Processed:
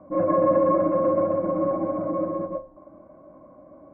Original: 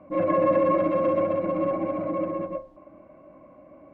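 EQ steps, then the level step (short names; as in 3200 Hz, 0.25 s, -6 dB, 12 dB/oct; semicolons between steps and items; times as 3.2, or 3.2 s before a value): LPF 1500 Hz 24 dB/oct; +1.5 dB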